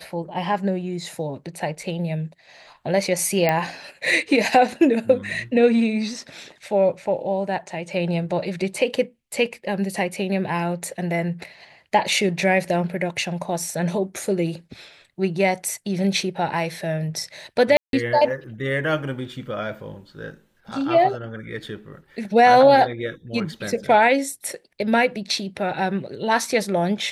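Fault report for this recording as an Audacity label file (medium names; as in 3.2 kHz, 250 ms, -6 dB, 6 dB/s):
3.490000	3.490000	pop -7 dBFS
17.770000	17.930000	dropout 162 ms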